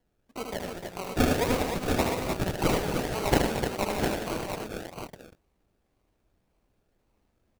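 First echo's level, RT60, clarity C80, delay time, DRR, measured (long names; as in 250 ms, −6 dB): −4.5 dB, no reverb audible, no reverb audible, 76 ms, no reverb audible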